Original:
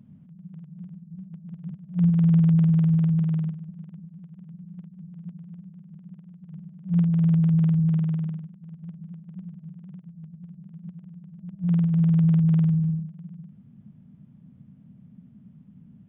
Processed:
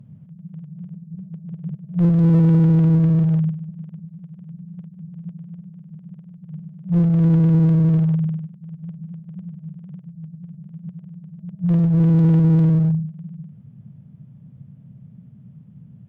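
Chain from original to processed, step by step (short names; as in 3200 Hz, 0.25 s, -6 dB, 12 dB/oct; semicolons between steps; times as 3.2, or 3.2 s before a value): graphic EQ 125/250/500 Hz +11/-7/+6 dB; one-sided clip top -17 dBFS, bottom -10.5 dBFS; 0.9–1.96 dynamic EQ 390 Hz, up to +6 dB, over -52 dBFS, Q 1.4; gain +2 dB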